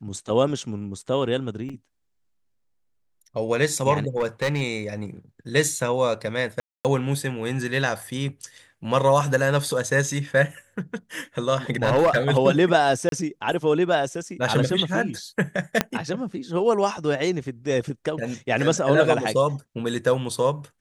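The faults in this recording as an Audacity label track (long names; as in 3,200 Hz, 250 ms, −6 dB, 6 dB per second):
1.690000	1.700000	drop-out 5.4 ms
4.160000	4.620000	clipping −18.5 dBFS
6.600000	6.850000	drop-out 248 ms
11.760000	12.180000	clipping −13.5 dBFS
13.090000	13.120000	drop-out 32 ms
15.810000	15.810000	click −4 dBFS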